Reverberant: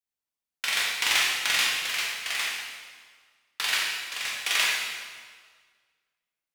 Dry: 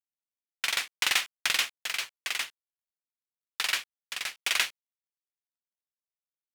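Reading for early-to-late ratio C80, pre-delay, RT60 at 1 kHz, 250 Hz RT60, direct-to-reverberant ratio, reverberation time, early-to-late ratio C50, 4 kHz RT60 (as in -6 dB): 1.5 dB, 14 ms, 1.6 s, 1.8 s, -4.5 dB, 1.7 s, -0.5 dB, 1.4 s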